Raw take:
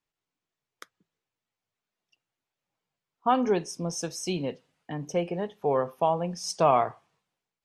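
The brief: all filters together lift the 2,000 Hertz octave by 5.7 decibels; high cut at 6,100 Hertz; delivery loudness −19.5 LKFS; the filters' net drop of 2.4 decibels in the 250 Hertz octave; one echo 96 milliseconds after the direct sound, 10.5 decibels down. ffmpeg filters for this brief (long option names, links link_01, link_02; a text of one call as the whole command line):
ffmpeg -i in.wav -af "lowpass=6100,equalizer=frequency=250:width_type=o:gain=-3.5,equalizer=frequency=2000:width_type=o:gain=7.5,aecho=1:1:96:0.299,volume=8dB" out.wav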